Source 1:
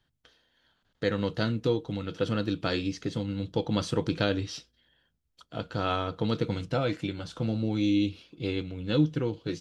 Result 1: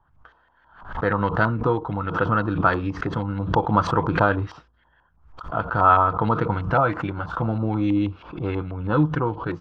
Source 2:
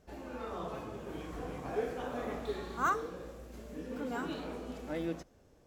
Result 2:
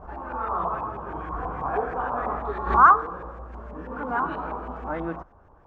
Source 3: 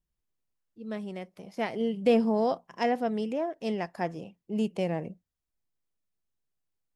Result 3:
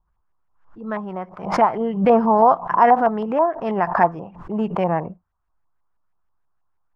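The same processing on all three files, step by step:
LFO low-pass saw up 6.2 Hz 930–2000 Hz; graphic EQ 125/250/500/1000/2000/4000 Hz -5/-8/-8/+6/-10/-6 dB; backwards sustainer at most 100 dB/s; normalise peaks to -3 dBFS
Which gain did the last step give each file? +12.0, +12.0, +14.0 dB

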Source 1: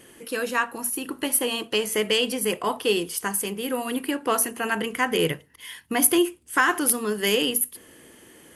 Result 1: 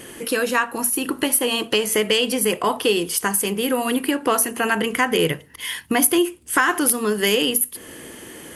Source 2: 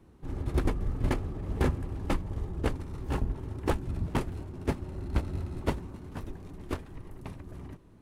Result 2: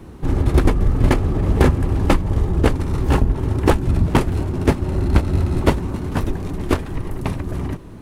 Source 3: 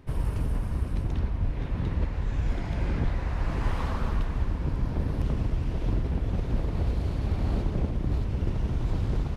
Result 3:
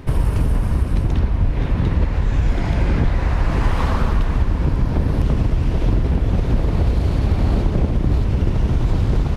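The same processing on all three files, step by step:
compressor 2:1, threshold -33 dBFS; match loudness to -20 LUFS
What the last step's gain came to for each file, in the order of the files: +11.5, +18.5, +15.5 dB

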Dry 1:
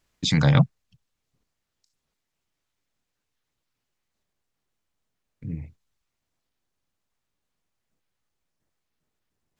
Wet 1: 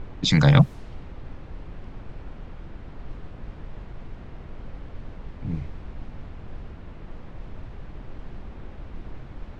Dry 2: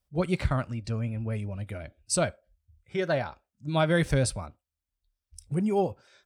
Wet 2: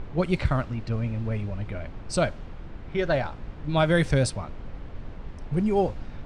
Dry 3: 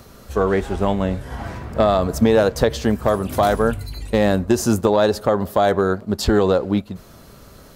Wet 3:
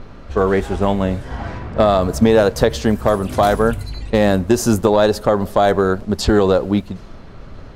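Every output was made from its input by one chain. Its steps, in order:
added noise brown -38 dBFS; low-pass opened by the level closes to 2400 Hz, open at -16.5 dBFS; gain +2.5 dB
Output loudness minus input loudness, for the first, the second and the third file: 0.0, +2.0, +2.5 LU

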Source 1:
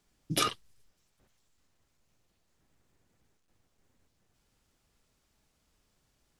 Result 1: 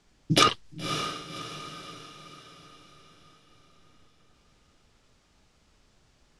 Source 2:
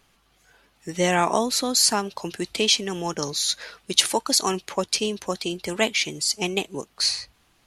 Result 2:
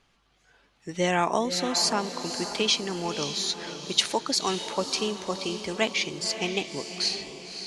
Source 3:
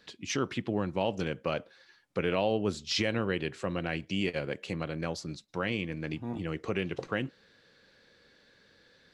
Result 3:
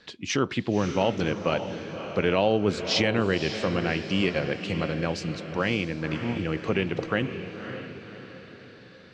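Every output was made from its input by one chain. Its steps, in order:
LPF 6400 Hz 12 dB/oct; on a send: diffused feedback echo 0.568 s, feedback 47%, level -9 dB; on the sum: match loudness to -27 LUFS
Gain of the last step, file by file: +9.5, -3.5, +6.0 dB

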